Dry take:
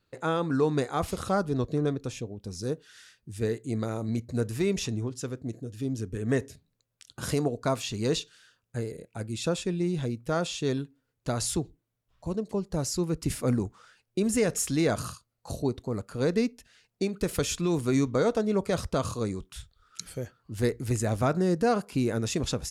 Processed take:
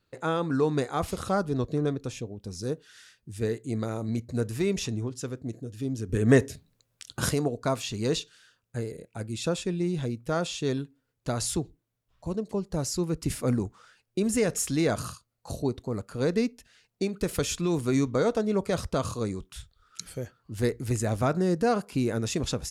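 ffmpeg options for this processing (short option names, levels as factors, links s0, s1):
-filter_complex "[0:a]asplit=3[s0][s1][s2];[s0]atrim=end=6.092[s3];[s1]atrim=start=6.088:end=7.292,asetpts=PTS-STARTPTS,volume=2.37[s4];[s2]atrim=start=7.288[s5];[s3][s4]acrossfade=d=0.004:c1=hsin:c2=hsin[s6];[s6][s5]acrossfade=d=0.004:c1=hsin:c2=hsin"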